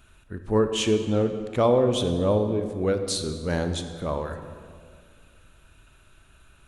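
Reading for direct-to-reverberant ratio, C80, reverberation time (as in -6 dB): 7.5 dB, 9.5 dB, 2.0 s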